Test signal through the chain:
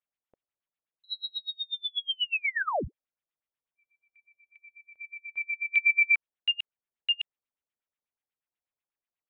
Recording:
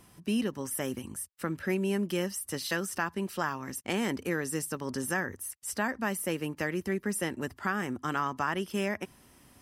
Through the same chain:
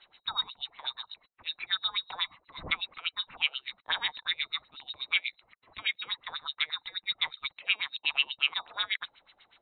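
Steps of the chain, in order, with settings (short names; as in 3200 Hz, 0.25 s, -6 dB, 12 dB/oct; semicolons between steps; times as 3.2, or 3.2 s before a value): inverted band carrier 4000 Hz; LFO low-pass sine 8.2 Hz 530–3100 Hz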